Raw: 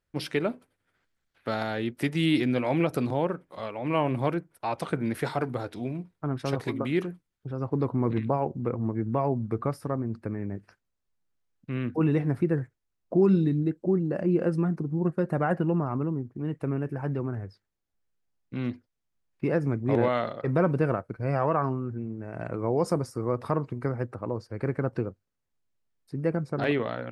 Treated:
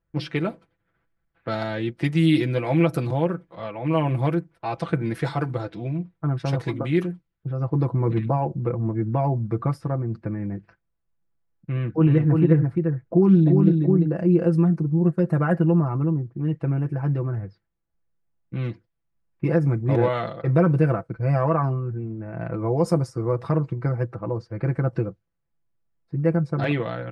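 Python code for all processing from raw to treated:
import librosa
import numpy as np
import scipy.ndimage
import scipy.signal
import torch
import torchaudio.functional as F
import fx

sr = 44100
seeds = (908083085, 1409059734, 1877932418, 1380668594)

y = fx.chain(x, sr, fx.high_shelf(hz=4100.0, db=-10.0),
    fx.echo_single(ms=345, db=-4.0),
    fx.doppler_dist(depth_ms=0.13), at=(11.72, 14.18))
y = fx.env_lowpass(y, sr, base_hz=1800.0, full_db=-22.5)
y = fx.peak_eq(y, sr, hz=73.0, db=11.0, octaves=1.7)
y = y + 0.71 * np.pad(y, (int(6.0 * sr / 1000.0), 0))[:len(y)]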